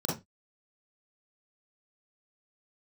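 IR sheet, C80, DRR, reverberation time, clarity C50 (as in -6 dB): 14.0 dB, -6.0 dB, 0.20 s, 3.5 dB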